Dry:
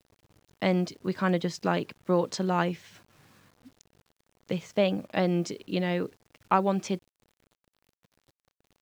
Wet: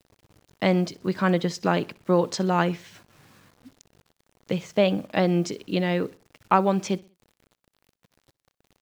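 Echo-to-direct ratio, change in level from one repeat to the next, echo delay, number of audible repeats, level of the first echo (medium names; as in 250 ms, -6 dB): -22.5 dB, -8.0 dB, 63 ms, 2, -23.0 dB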